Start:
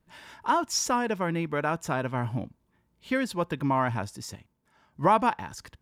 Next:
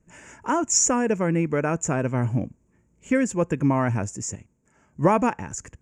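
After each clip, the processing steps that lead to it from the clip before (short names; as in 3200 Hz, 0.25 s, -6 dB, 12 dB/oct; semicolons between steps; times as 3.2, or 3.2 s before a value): EQ curve 480 Hz 0 dB, 910 Hz -9 dB, 2500 Hz -4 dB, 4000 Hz -27 dB, 7000 Hz +10 dB, 12000 Hz -21 dB; gain +7 dB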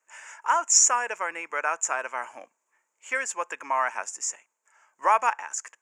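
ladder high-pass 750 Hz, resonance 25%; gain +8 dB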